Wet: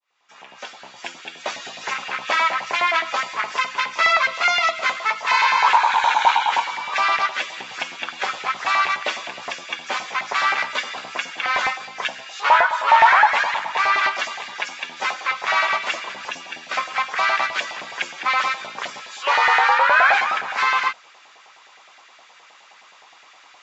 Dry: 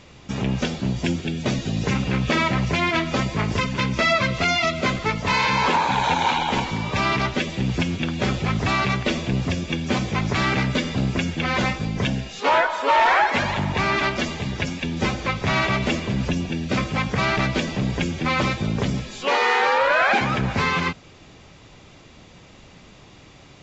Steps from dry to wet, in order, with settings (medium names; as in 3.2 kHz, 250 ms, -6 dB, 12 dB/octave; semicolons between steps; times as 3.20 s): fade-in on the opening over 1.63 s; LFO high-pass saw up 9.6 Hz 730–1700 Hz